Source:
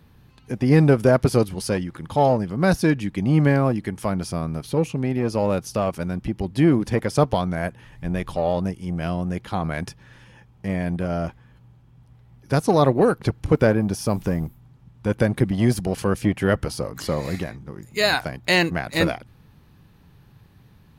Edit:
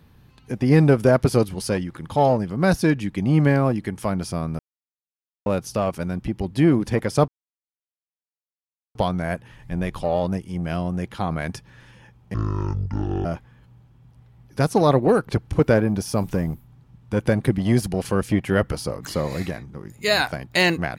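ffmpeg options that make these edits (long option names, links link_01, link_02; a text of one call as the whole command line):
ffmpeg -i in.wav -filter_complex "[0:a]asplit=6[link_01][link_02][link_03][link_04][link_05][link_06];[link_01]atrim=end=4.59,asetpts=PTS-STARTPTS,afade=type=out:start_time=4.586:duration=0.004:curve=hsin[link_07];[link_02]atrim=start=4.59:end=5.46,asetpts=PTS-STARTPTS,volume=0[link_08];[link_03]atrim=start=5.46:end=7.28,asetpts=PTS-STARTPTS,afade=type=in:duration=0.004:curve=hsin,afade=type=out:start_time=1.816:duration=0.004:curve=hsin,apad=pad_dur=1.67[link_09];[link_04]atrim=start=7.28:end=10.674,asetpts=PTS-STARTPTS,afade=type=in:duration=0.004:curve=hsin[link_10];[link_05]atrim=start=10.67:end=11.18,asetpts=PTS-STARTPTS,asetrate=24696,aresample=44100,atrim=end_sample=40162,asetpts=PTS-STARTPTS[link_11];[link_06]atrim=start=11.176[link_12];[link_07][link_08][link_09][link_10]concat=n=4:v=0:a=1[link_13];[link_13][link_11]acrossfade=duration=0.004:curve1=hsin:curve2=hsin[link_14];[link_14][link_12]acrossfade=duration=0.004:curve1=hsin:curve2=hsin" out.wav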